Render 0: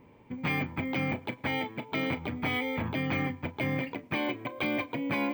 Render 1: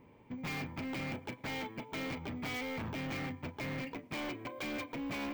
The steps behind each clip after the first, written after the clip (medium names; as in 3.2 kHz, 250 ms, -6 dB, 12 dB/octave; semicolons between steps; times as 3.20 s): hard clipper -33 dBFS, distortion -7 dB; trim -3.5 dB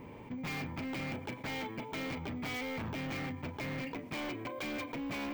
level flattener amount 50%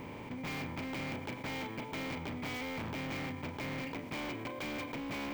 spectral levelling over time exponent 0.6; trim -3.5 dB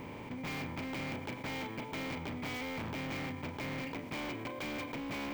no audible change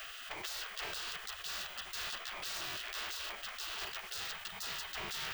spectral gate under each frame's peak -20 dB weak; three bands compressed up and down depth 40%; trim +9.5 dB